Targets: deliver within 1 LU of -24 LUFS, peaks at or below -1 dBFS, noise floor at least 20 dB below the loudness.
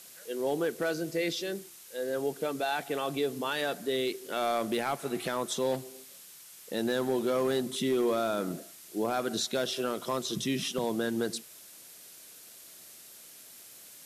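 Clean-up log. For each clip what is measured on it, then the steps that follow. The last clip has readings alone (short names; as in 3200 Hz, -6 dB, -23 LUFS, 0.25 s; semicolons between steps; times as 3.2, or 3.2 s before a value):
clipped 0.6%; flat tops at -21.5 dBFS; noise floor -51 dBFS; noise floor target -52 dBFS; loudness -31.5 LUFS; peak -21.5 dBFS; loudness target -24.0 LUFS
-> clip repair -21.5 dBFS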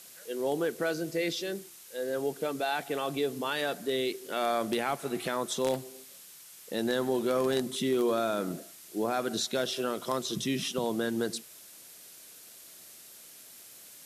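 clipped 0.0%; noise floor -51 dBFS; noise floor target -52 dBFS
-> denoiser 6 dB, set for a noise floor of -51 dBFS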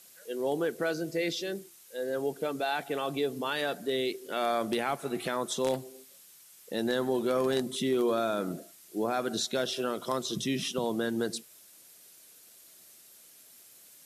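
noise floor -56 dBFS; loudness -31.5 LUFS; peak -12.5 dBFS; loudness target -24.0 LUFS
-> gain +7.5 dB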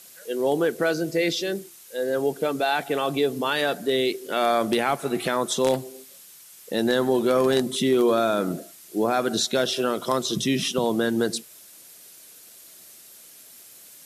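loudness -24.0 LUFS; peak -5.0 dBFS; noise floor -48 dBFS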